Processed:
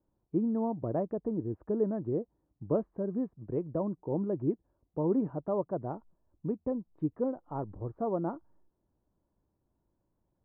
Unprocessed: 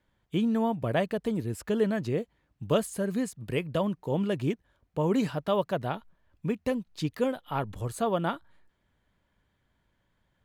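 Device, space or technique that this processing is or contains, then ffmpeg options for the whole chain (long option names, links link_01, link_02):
under water: -af "lowpass=frequency=1000:width=0.5412,lowpass=frequency=1000:width=1.3066,equalizer=frequency=330:width_type=o:width=0.51:gain=8,volume=-5.5dB"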